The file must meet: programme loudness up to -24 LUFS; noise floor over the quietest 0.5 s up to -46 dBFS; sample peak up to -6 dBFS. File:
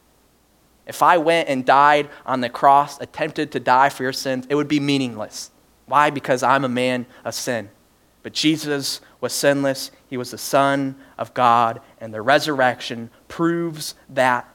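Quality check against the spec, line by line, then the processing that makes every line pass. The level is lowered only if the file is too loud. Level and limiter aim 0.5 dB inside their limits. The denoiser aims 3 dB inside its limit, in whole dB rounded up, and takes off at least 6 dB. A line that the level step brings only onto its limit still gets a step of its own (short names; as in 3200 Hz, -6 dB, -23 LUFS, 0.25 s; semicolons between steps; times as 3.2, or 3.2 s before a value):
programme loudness -19.5 LUFS: fail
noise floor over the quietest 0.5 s -58 dBFS: OK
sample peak -1.5 dBFS: fail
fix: gain -5 dB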